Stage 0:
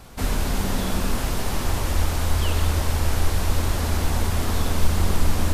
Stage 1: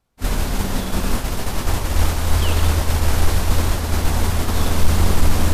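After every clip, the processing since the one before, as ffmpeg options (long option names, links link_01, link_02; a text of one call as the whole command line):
ffmpeg -i in.wav -af "agate=range=-33dB:threshold=-17dB:ratio=3:detection=peak,acontrast=53" out.wav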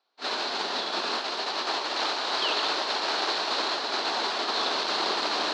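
ffmpeg -i in.wav -af "highpass=frequency=400:width=0.5412,highpass=frequency=400:width=1.3066,equalizer=frequency=510:width_type=q:width=4:gain=-7,equalizer=frequency=2100:width_type=q:width=4:gain=-4,equalizer=frequency=4200:width_type=q:width=4:gain=10,lowpass=frequency=4900:width=0.5412,lowpass=frequency=4900:width=1.3066" out.wav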